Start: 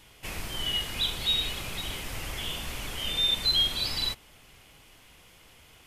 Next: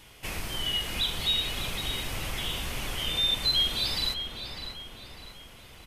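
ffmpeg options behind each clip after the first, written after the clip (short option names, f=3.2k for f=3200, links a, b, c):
-filter_complex "[0:a]bandreject=f=7.2k:w=26,asplit=2[a][b];[b]acompressor=threshold=-34dB:ratio=6,volume=-2dB[c];[a][c]amix=inputs=2:normalize=0,asplit=2[d][e];[e]adelay=600,lowpass=f=3k:p=1,volume=-6.5dB,asplit=2[f][g];[g]adelay=600,lowpass=f=3k:p=1,volume=0.54,asplit=2[h][i];[i]adelay=600,lowpass=f=3k:p=1,volume=0.54,asplit=2[j][k];[k]adelay=600,lowpass=f=3k:p=1,volume=0.54,asplit=2[l][m];[m]adelay=600,lowpass=f=3k:p=1,volume=0.54,asplit=2[n][o];[o]adelay=600,lowpass=f=3k:p=1,volume=0.54,asplit=2[p][q];[q]adelay=600,lowpass=f=3k:p=1,volume=0.54[r];[d][f][h][j][l][n][p][r]amix=inputs=8:normalize=0,volume=-2.5dB"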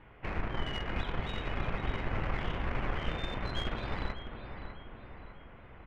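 -filter_complex "[0:a]lowpass=f=1.9k:w=0.5412,lowpass=f=1.9k:w=1.3066,asplit=2[a][b];[b]acrusher=bits=4:mix=0:aa=0.5,volume=-8.5dB[c];[a][c]amix=inputs=2:normalize=0"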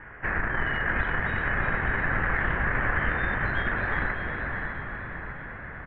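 -filter_complex "[0:a]asplit=2[a][b];[b]alimiter=level_in=7.5dB:limit=-24dB:level=0:latency=1:release=128,volume=-7.5dB,volume=1.5dB[c];[a][c]amix=inputs=2:normalize=0,lowpass=f=1.7k:t=q:w=6.9,asplit=7[d][e][f][g][h][i][j];[e]adelay=364,afreqshift=39,volume=-8dB[k];[f]adelay=728,afreqshift=78,volume=-13.5dB[l];[g]adelay=1092,afreqshift=117,volume=-19dB[m];[h]adelay=1456,afreqshift=156,volume=-24.5dB[n];[i]adelay=1820,afreqshift=195,volume=-30.1dB[o];[j]adelay=2184,afreqshift=234,volume=-35.6dB[p];[d][k][l][m][n][o][p]amix=inputs=7:normalize=0"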